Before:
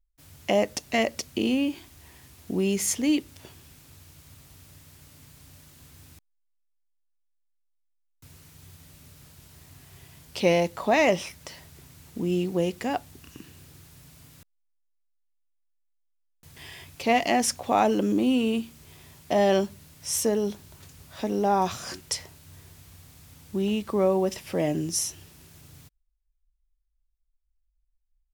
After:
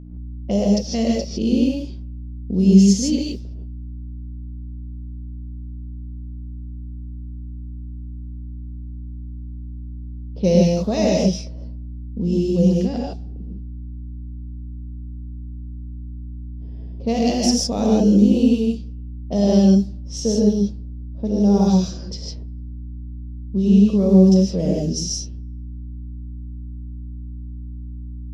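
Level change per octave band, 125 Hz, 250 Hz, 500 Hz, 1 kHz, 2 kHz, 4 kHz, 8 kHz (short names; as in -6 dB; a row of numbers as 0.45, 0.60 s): +15.5, +11.5, +4.0, -5.0, -9.0, +4.0, +1.5 dB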